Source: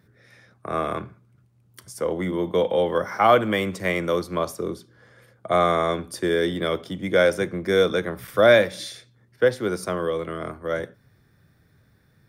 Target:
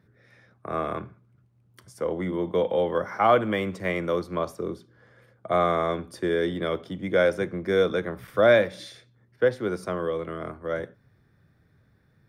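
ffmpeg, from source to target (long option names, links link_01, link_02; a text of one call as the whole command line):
ffmpeg -i in.wav -af "highshelf=frequency=4200:gain=-10.5,volume=-2.5dB" out.wav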